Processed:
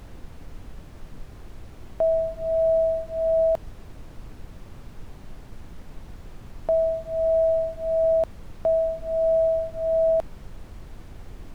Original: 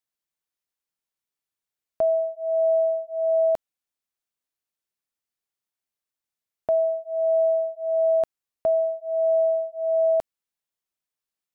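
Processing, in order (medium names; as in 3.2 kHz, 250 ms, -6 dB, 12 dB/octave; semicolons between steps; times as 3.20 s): added noise brown -38 dBFS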